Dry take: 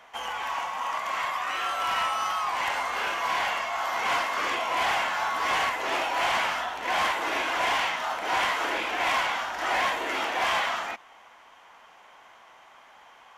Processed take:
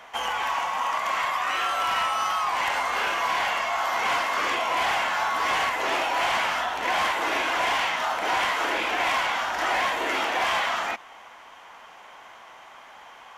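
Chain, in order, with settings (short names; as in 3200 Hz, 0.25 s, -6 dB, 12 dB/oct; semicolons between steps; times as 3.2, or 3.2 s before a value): compressor 3:1, threshold -29 dBFS, peak gain reduction 5.5 dB; gain +6 dB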